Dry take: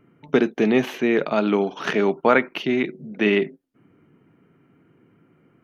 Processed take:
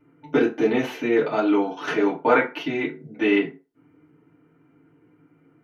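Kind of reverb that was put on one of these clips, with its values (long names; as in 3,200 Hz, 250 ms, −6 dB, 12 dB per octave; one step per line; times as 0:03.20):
feedback delay network reverb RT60 0.3 s, low-frequency decay 0.75×, high-frequency decay 0.65×, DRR −7.5 dB
level −9.5 dB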